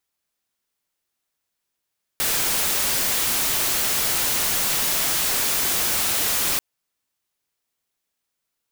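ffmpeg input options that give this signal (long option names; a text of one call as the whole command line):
ffmpeg -f lavfi -i "anoisesrc=color=white:amplitude=0.138:duration=4.39:sample_rate=44100:seed=1" out.wav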